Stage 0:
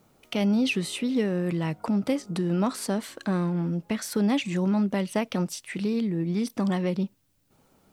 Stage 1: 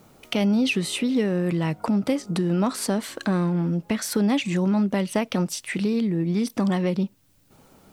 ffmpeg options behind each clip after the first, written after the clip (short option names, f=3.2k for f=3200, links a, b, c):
-af "acompressor=threshold=-38dB:ratio=1.5,volume=8.5dB"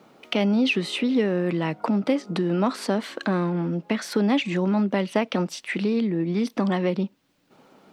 -filter_complex "[0:a]acrossover=split=170 4800:gain=0.0631 1 0.178[a][b][c];[a][b][c]amix=inputs=3:normalize=0,volume=2dB"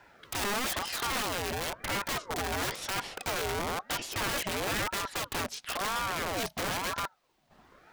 -af "aeval=exprs='(tanh(6.31*val(0)+0.65)-tanh(0.65))/6.31':c=same,aeval=exprs='(mod(21.1*val(0)+1,2)-1)/21.1':c=same,aeval=exprs='val(0)*sin(2*PI*800*n/s+800*0.5/1*sin(2*PI*1*n/s))':c=same,volume=2dB"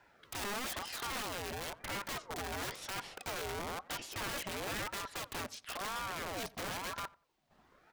-filter_complex "[0:a]asplit=2[a][b];[b]adelay=89,lowpass=f=1.6k:p=1,volume=-20.5dB,asplit=2[c][d];[d]adelay=89,lowpass=f=1.6k:p=1,volume=0.25[e];[a][c][e]amix=inputs=3:normalize=0,volume=-7.5dB"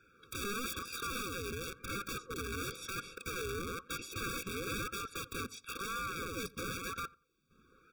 -af "afftfilt=real='re*eq(mod(floor(b*sr/1024/550),2),0)':imag='im*eq(mod(floor(b*sr/1024/550),2),0)':win_size=1024:overlap=0.75,volume=3dB"